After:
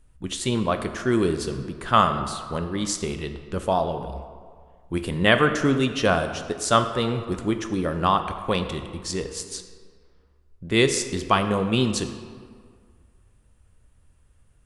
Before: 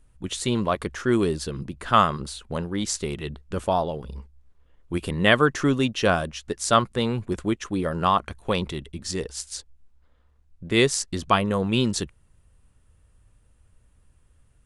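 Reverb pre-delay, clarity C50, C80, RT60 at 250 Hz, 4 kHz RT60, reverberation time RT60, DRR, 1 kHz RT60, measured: 13 ms, 9.0 dB, 10.0 dB, 1.8 s, 1.2 s, 1.9 s, 7.5 dB, 2.0 s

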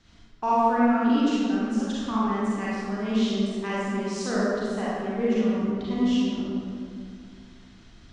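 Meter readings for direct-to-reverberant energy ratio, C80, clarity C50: -8.5 dB, -1.5 dB, -5.0 dB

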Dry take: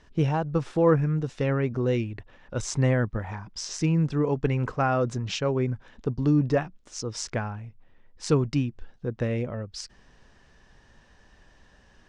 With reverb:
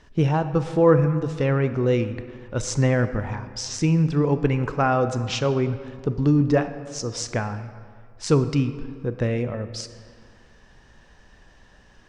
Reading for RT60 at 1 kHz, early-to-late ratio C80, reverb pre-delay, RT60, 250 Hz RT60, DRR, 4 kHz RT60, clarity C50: 2.0 s, 12.5 dB, 24 ms, 2.1 s, 2.1 s, 10.5 dB, 1.2 s, 11.5 dB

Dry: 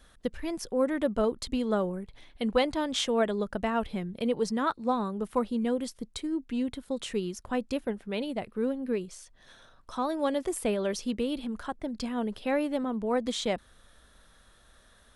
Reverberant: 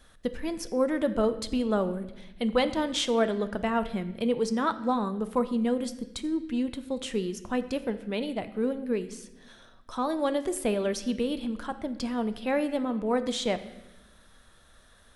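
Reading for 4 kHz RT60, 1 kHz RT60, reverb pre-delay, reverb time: 0.90 s, 0.85 s, 8 ms, 1.0 s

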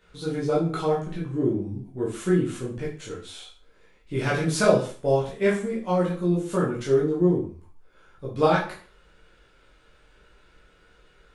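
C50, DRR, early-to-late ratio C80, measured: 5.5 dB, -6.5 dB, 11.0 dB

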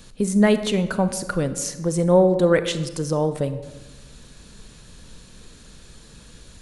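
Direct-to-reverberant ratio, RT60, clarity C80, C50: 11.0 dB, 1.2 s, 13.5 dB, 12.0 dB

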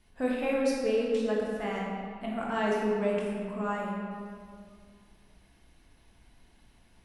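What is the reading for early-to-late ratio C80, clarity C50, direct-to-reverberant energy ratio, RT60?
1.0 dB, -0.5 dB, -3.5 dB, 2.1 s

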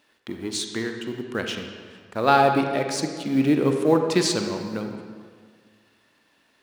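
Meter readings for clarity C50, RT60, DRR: 5.5 dB, 1.8 s, 4.5 dB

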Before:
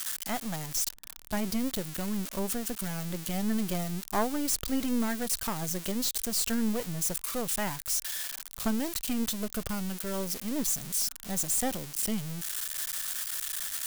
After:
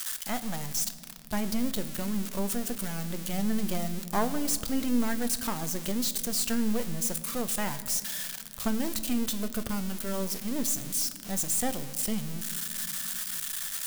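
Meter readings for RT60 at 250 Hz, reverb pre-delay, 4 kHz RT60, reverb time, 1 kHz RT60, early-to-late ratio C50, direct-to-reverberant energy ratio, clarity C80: 3.8 s, 9 ms, 1.4 s, 2.2 s, 1.7 s, 13.5 dB, 10.0 dB, 14.5 dB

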